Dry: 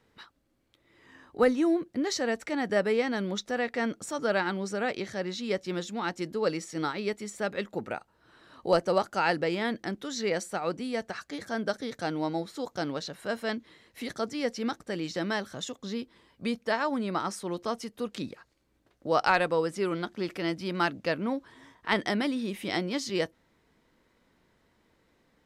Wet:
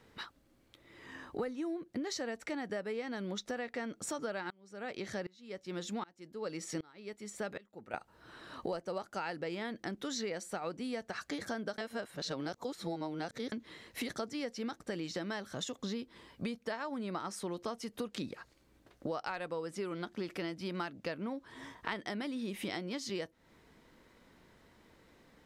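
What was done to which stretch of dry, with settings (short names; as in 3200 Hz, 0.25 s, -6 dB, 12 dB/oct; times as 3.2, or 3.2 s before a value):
4.5–7.94 dB-ramp tremolo swelling 1.3 Hz, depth 30 dB
11.78–13.52 reverse
whole clip: compressor 12:1, threshold -40 dBFS; gain +5 dB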